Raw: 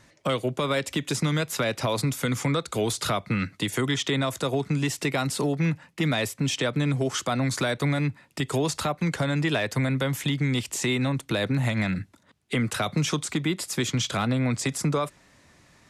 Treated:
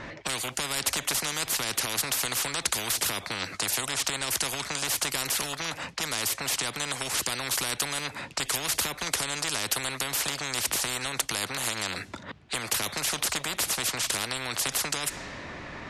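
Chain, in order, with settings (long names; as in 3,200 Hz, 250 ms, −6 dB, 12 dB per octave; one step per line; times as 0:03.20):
low-pass that shuts in the quiet parts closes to 2,600 Hz, open at −24.5 dBFS
every bin compressed towards the loudest bin 10 to 1
level +6 dB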